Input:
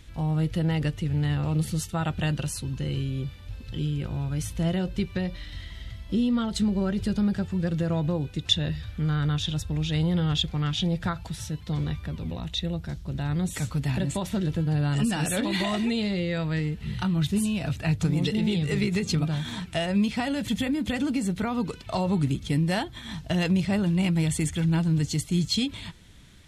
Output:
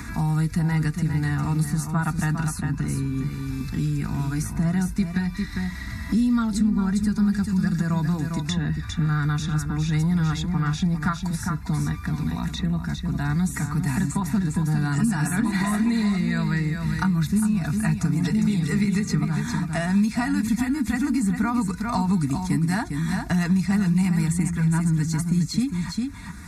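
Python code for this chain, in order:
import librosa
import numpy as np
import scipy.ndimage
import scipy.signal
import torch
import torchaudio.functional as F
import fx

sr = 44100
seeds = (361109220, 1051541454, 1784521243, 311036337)

y = scipy.signal.sosfilt(scipy.signal.butter(2, 56.0, 'highpass', fs=sr, output='sos'), x)
y = fx.fixed_phaser(y, sr, hz=1300.0, stages=4)
y = y + 0.51 * np.pad(y, (int(4.2 * sr / 1000.0), 0))[:len(y)]
y = y + 10.0 ** (-8.0 / 20.0) * np.pad(y, (int(403 * sr / 1000.0), 0))[:len(y)]
y = fx.band_squash(y, sr, depth_pct=70)
y = y * librosa.db_to_amplitude(4.0)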